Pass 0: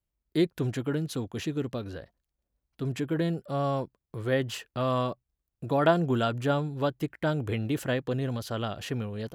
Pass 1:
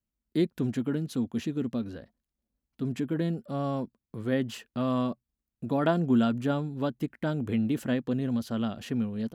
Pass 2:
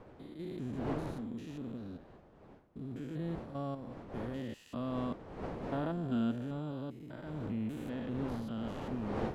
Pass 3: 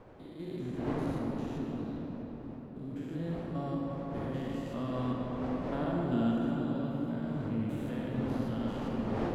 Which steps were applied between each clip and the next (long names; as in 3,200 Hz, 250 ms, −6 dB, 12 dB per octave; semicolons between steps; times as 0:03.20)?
parametric band 230 Hz +14 dB 0.55 octaves; level −4.5 dB
spectrum averaged block by block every 200 ms; wind on the microphone 540 Hz −38 dBFS; level −8 dB
convolution reverb RT60 4.9 s, pre-delay 27 ms, DRR −1.5 dB